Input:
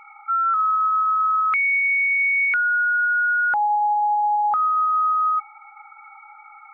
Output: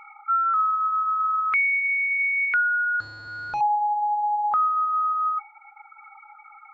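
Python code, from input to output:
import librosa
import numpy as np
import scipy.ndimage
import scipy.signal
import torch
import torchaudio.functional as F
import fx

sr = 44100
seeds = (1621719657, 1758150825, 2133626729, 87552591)

y = fx.delta_mod(x, sr, bps=32000, step_db=-40.0, at=(3.0, 3.61))
y = fx.dereverb_blind(y, sr, rt60_s=1.0)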